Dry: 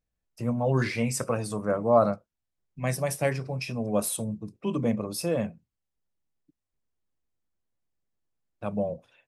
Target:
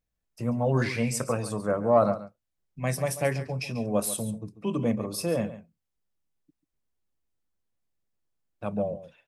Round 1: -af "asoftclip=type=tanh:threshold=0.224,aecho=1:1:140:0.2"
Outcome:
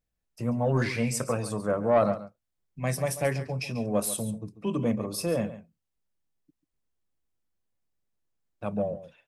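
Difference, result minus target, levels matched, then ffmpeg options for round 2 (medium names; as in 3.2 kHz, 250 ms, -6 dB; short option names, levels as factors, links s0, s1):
saturation: distortion +13 dB
-af "asoftclip=type=tanh:threshold=0.562,aecho=1:1:140:0.2"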